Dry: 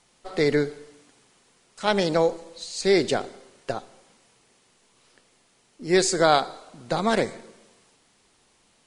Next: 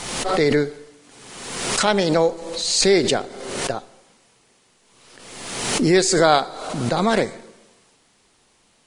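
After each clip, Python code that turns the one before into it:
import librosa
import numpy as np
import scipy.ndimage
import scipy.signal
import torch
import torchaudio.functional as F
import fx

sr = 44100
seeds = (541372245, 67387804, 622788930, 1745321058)

y = fx.pre_swell(x, sr, db_per_s=42.0)
y = y * librosa.db_to_amplitude(3.0)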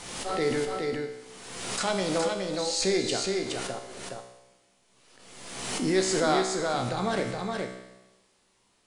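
y = fx.comb_fb(x, sr, f0_hz=63.0, decay_s=1.0, harmonics='all', damping=0.0, mix_pct=80)
y = y + 10.0 ** (-4.0 / 20.0) * np.pad(y, (int(418 * sr / 1000.0), 0))[:len(y)]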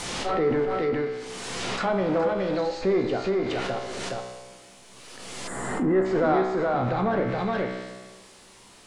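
y = fx.spec_box(x, sr, start_s=5.47, length_s=0.58, low_hz=2100.0, high_hz=6800.0, gain_db=-19)
y = fx.power_curve(y, sr, exponent=0.7)
y = fx.env_lowpass_down(y, sr, base_hz=1500.0, full_db=-20.5)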